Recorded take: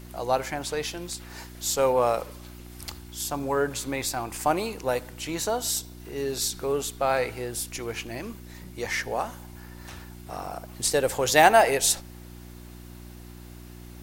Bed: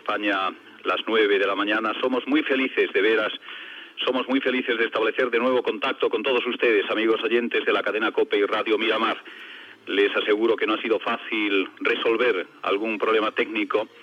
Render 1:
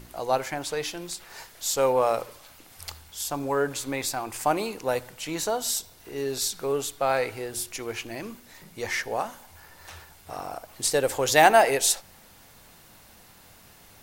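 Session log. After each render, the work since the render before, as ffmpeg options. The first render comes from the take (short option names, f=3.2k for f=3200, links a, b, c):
-af "bandreject=f=60:t=h:w=4,bandreject=f=120:t=h:w=4,bandreject=f=180:t=h:w=4,bandreject=f=240:t=h:w=4,bandreject=f=300:t=h:w=4,bandreject=f=360:t=h:w=4"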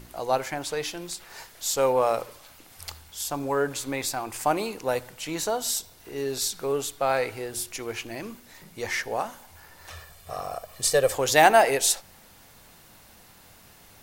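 -filter_complex "[0:a]asettb=1/sr,asplit=3[a][b][c];[a]atrim=end=9.904[d];[b]atrim=start=9.9:end=11.15,asetpts=PTS-STARTPTS,afade=t=in:d=0.004:c=qsin,afade=t=out:st=1.246:d=0.004:c=qsin,aecho=1:1:1.7:0.65,atrim=end_sample=55125[e];[c]atrim=start=11.146[f];[d][e]acrossfade=d=0.004:c1=hsin:c2=qsin[g];[g][f]acrossfade=d=0.004:c1=qsin:c2=hsin"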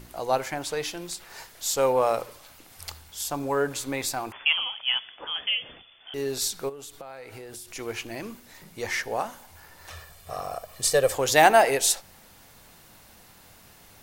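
-filter_complex "[0:a]asettb=1/sr,asplit=3[a][b][c];[a]atrim=end=4.324[d];[b]atrim=start=4.32:end=6.14,asetpts=PTS-STARTPTS,afade=t=in:d=0.004:c=qsin,afade=t=out:st=1.816:d=0.004:c=qsin,lowpass=f=3k:t=q:w=0.5098,lowpass=f=3k:t=q:w=0.6013,lowpass=f=3k:t=q:w=0.9,lowpass=f=3k:t=q:w=2.563,afreqshift=-3500[e];[c]atrim=start=6.136[f];[d][e]acrossfade=d=0.004:c1=hsin:c2=qsin[g];[g][f]acrossfade=d=0.004:c1=qsin:c2=hsin,asplit=3[h][i][j];[h]afade=t=out:st=6.68:d=0.02[k];[i]acompressor=threshold=-37dB:ratio=12:attack=3.2:release=140:knee=1:detection=peak,afade=t=in:st=6.68:d=0.02,afade=t=out:st=7.75:d=0.02[l];[j]afade=t=in:st=7.75:d=0.02[m];[k][l][m]amix=inputs=3:normalize=0"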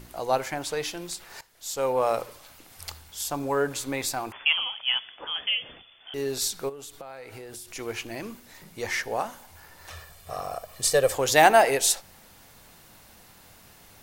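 -filter_complex "[0:a]asplit=2[a][b];[a]atrim=end=1.41,asetpts=PTS-STARTPTS,afade=t=out:st=1.406:d=0.004:c=hsin:silence=0.141254[c];[b]atrim=start=1.41,asetpts=PTS-STARTPTS,afade=t=in:d=0.76:silence=0.141254[d];[c][d]concat=n=2:v=0:a=1"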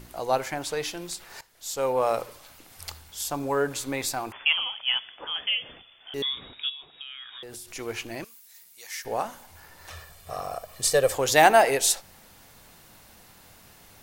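-filter_complex "[0:a]asettb=1/sr,asplit=3[a][b][c];[a]atrim=end=6.224[d];[b]atrim=start=6.22:end=7.43,asetpts=PTS-STARTPTS,afade=t=in:d=0.004:c=qsin,afade=t=out:st=1.206:d=0.004:c=qsin,lowpass=f=3.2k:t=q:w=0.5098,lowpass=f=3.2k:t=q:w=0.6013,lowpass=f=3.2k:t=q:w=0.9,lowpass=f=3.2k:t=q:w=2.563,afreqshift=-3800[e];[c]atrim=start=7.426[f];[d][e]acrossfade=d=0.004:c1=hsin:c2=qsin[g];[g][f]acrossfade=d=0.004:c1=qsin:c2=hsin,asettb=1/sr,asplit=3[h][i][j];[h]atrim=end=8.244[k];[i]atrim=start=8.24:end=9.05,asetpts=PTS-STARTPTS,afade=t=in:d=0.004:c=qsin,afade=t=out:st=0.806:d=0.004:c=qsin,aderivative[l];[j]atrim=start=9.046[m];[k][l]acrossfade=d=0.004:c1=hsin:c2=qsin[n];[n][m]acrossfade=d=0.004:c1=qsin:c2=hsin"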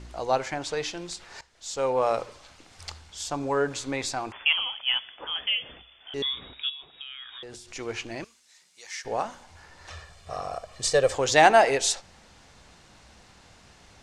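-af "lowpass=f=7.5k:w=0.5412,lowpass=f=7.5k:w=1.3066,equalizer=f=62:w=7.2:g=12"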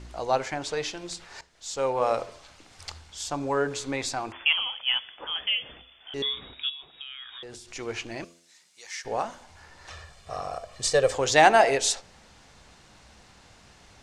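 -af "bandreject=f=85.08:t=h:w=4,bandreject=f=170.16:t=h:w=4,bandreject=f=255.24:t=h:w=4,bandreject=f=340.32:t=h:w=4,bandreject=f=425.4:t=h:w=4,bandreject=f=510.48:t=h:w=4,bandreject=f=595.56:t=h:w=4,bandreject=f=680.64:t=h:w=4"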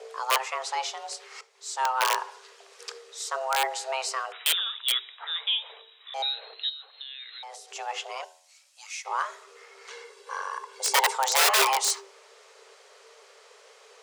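-af "aeval=exprs='(mod(5.62*val(0)+1,2)-1)/5.62':c=same,afreqshift=390"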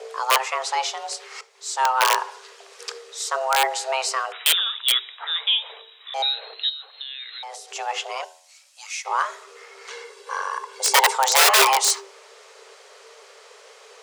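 -af "volume=6dB,alimiter=limit=-1dB:level=0:latency=1"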